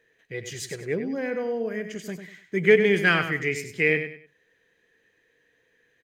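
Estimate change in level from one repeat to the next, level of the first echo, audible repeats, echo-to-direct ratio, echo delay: -11.0 dB, -9.0 dB, 3, -8.5 dB, 98 ms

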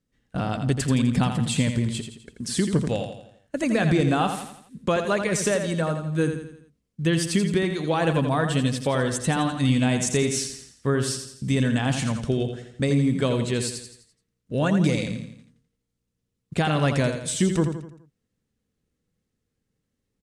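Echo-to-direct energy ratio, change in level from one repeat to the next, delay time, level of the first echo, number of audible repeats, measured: -6.5 dB, -6.5 dB, 84 ms, -7.5 dB, 5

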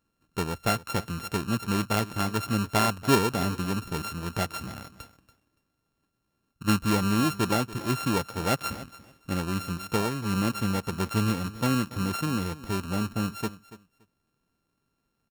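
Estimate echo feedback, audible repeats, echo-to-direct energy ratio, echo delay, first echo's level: 17%, 2, -17.0 dB, 0.285 s, -17.0 dB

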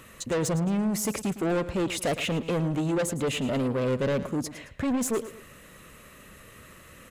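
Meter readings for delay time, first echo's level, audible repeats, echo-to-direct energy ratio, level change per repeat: 0.11 s, -14.0 dB, 2, -13.5 dB, -8.0 dB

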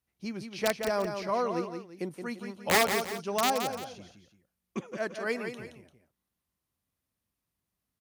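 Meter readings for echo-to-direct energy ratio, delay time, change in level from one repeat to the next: -6.5 dB, 0.172 s, -8.5 dB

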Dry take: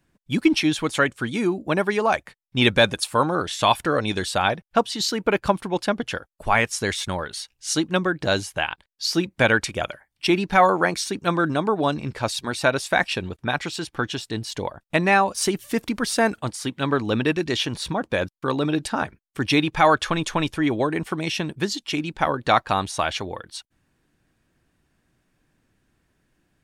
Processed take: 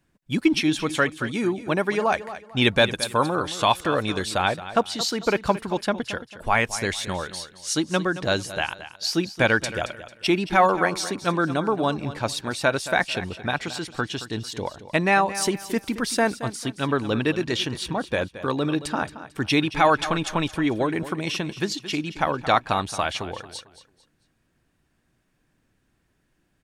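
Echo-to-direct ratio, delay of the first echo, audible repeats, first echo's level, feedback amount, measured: -13.5 dB, 0.223 s, 3, -14.0 dB, 31%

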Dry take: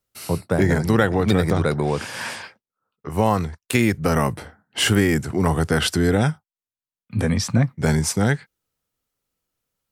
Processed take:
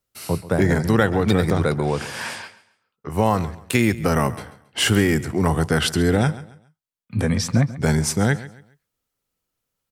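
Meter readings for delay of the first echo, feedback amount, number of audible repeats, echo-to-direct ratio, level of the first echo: 0.137 s, 30%, 2, -16.5 dB, -17.0 dB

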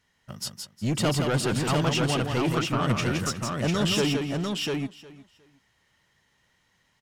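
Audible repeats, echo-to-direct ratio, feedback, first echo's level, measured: 5, -1.0 dB, no steady repeat, -5.0 dB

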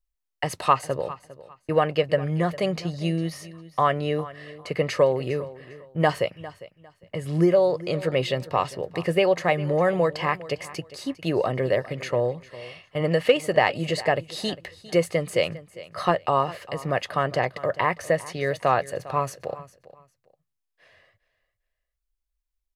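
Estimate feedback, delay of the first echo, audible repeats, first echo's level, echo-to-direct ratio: 23%, 0.403 s, 2, -17.5 dB, -17.5 dB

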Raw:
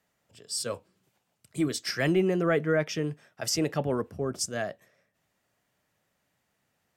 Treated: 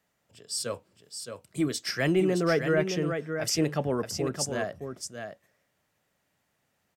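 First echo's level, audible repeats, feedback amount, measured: -7.0 dB, 1, no steady repeat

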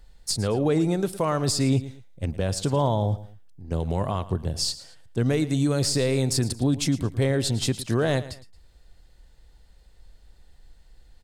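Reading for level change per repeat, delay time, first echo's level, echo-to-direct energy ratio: -9.5 dB, 0.112 s, -16.0 dB, -15.5 dB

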